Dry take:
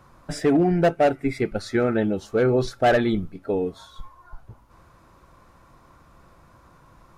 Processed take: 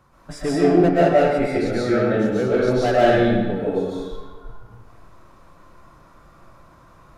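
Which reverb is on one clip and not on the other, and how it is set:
comb and all-pass reverb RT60 1.4 s, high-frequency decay 0.75×, pre-delay 95 ms, DRR −8 dB
level −5 dB

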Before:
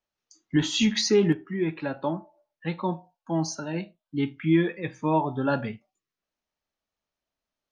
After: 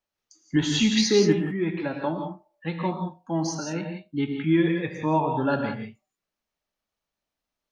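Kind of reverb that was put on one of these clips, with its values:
reverb whose tail is shaped and stops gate 200 ms rising, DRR 3.5 dB

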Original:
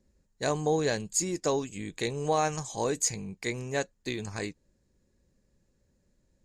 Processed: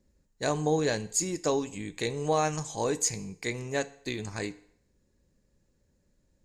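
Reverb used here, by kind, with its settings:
feedback delay network reverb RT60 0.67 s, low-frequency decay 0.7×, high-frequency decay 0.9×, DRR 13.5 dB

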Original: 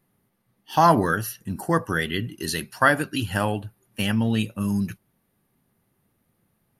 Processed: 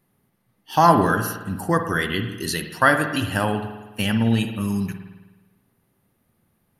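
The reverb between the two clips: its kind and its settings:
spring reverb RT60 1.2 s, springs 52 ms, chirp 30 ms, DRR 7 dB
level +1.5 dB

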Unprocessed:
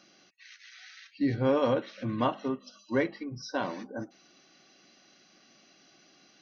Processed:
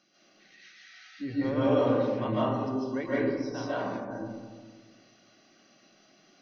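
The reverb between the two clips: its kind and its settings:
comb and all-pass reverb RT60 1.6 s, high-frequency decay 0.25×, pre-delay 105 ms, DRR −9 dB
level −9 dB

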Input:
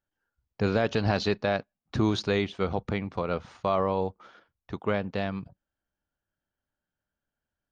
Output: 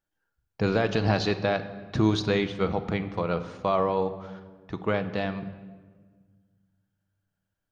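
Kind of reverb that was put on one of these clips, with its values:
rectangular room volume 1,600 cubic metres, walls mixed, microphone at 0.62 metres
level +1 dB

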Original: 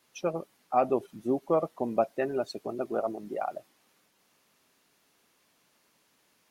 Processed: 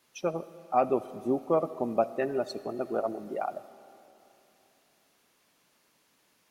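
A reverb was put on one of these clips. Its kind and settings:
comb and all-pass reverb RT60 3.1 s, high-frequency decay 0.8×, pre-delay 25 ms, DRR 15.5 dB

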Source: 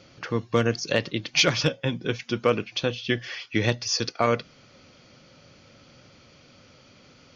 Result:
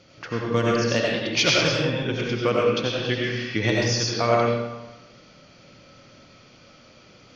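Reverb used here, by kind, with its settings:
comb and all-pass reverb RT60 1.1 s, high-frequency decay 0.7×, pre-delay 50 ms, DRR −3.5 dB
level −2 dB

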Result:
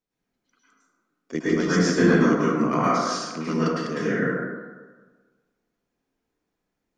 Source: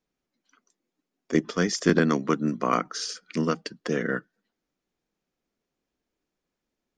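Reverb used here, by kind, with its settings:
dense smooth reverb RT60 1.4 s, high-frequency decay 0.4×, pre-delay 95 ms, DRR −10 dB
level −6.5 dB

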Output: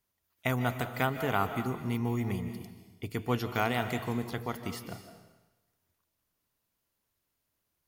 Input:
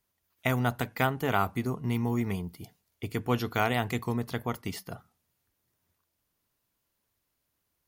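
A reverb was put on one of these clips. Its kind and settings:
comb and all-pass reverb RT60 1.1 s, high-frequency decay 1×, pre-delay 110 ms, DRR 8.5 dB
level −2.5 dB

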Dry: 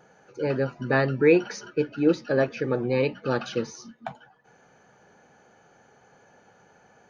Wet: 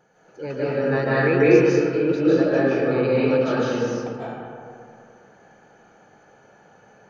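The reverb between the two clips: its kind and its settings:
comb and all-pass reverb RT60 2.5 s, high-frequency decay 0.4×, pre-delay 115 ms, DRR −9 dB
level −5 dB

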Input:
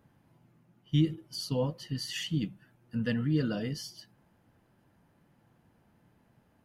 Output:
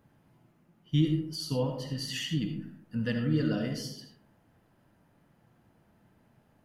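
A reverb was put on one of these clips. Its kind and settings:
comb and all-pass reverb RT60 0.74 s, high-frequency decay 0.4×, pre-delay 25 ms, DRR 4 dB

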